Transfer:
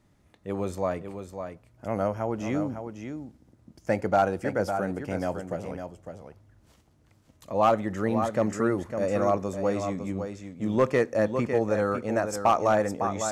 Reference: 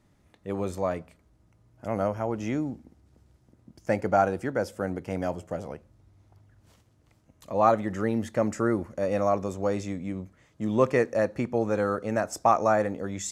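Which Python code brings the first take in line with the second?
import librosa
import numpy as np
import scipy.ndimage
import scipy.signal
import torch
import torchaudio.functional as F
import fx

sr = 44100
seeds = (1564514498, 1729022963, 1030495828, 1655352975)

y = fx.fix_declip(x, sr, threshold_db=-13.0)
y = fx.fix_echo_inverse(y, sr, delay_ms=554, level_db=-8.0)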